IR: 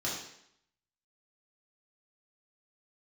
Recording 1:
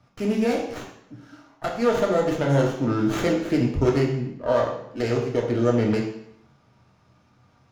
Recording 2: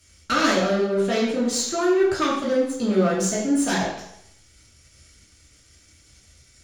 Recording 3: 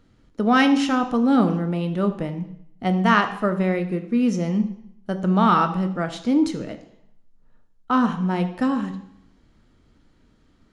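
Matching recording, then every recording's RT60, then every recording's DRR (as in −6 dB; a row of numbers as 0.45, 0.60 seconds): 2; 0.70, 0.70, 0.70 seconds; −1.0, −6.5, 7.5 decibels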